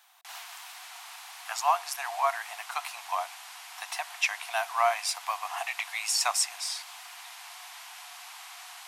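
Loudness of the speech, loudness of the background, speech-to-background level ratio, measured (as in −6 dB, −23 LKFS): −30.0 LKFS, −43.5 LKFS, 13.5 dB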